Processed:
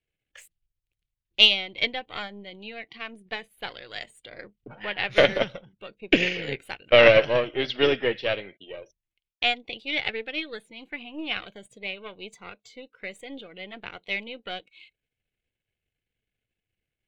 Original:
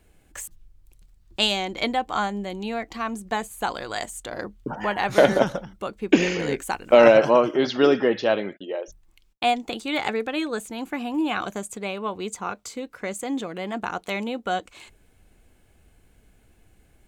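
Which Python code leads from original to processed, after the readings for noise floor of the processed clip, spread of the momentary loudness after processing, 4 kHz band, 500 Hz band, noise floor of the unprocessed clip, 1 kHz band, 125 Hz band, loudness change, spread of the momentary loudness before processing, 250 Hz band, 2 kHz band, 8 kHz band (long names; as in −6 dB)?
below −85 dBFS, 24 LU, +5.0 dB, −3.5 dB, −59 dBFS, −9.0 dB, −3.5 dB, +0.5 dB, 15 LU, −8.5 dB, +2.5 dB, below −10 dB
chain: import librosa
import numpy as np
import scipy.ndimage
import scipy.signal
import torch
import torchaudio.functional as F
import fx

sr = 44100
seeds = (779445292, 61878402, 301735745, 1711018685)

y = np.where(x < 0.0, 10.0 ** (-7.0 / 20.0) * x, x)
y = fx.peak_eq(y, sr, hz=3000.0, db=10.5, octaves=0.91)
y = fx.noise_reduce_blind(y, sr, reduce_db=15)
y = fx.graphic_eq(y, sr, hz=(125, 500, 1000, 2000, 4000), db=(10, 8, -4, 10, 4))
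y = fx.upward_expand(y, sr, threshold_db=-26.0, expansion=1.5)
y = y * 10.0 ** (-5.5 / 20.0)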